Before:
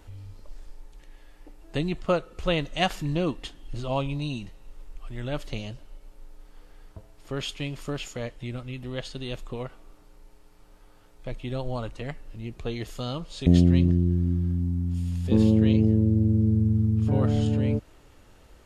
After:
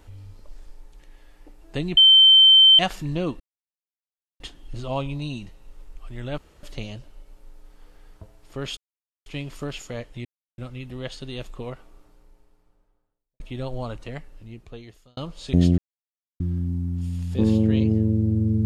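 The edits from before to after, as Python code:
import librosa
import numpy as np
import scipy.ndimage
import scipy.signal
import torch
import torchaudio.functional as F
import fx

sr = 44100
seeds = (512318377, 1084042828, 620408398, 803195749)

y = fx.studio_fade_out(x, sr, start_s=9.61, length_s=1.72)
y = fx.edit(y, sr, fx.bleep(start_s=1.97, length_s=0.82, hz=3100.0, db=-9.0),
    fx.insert_silence(at_s=3.4, length_s=1.0),
    fx.insert_room_tone(at_s=5.38, length_s=0.25),
    fx.insert_silence(at_s=7.52, length_s=0.49),
    fx.insert_silence(at_s=8.51, length_s=0.33),
    fx.fade_out_span(start_s=11.98, length_s=1.12),
    fx.silence(start_s=13.71, length_s=0.62), tone=tone)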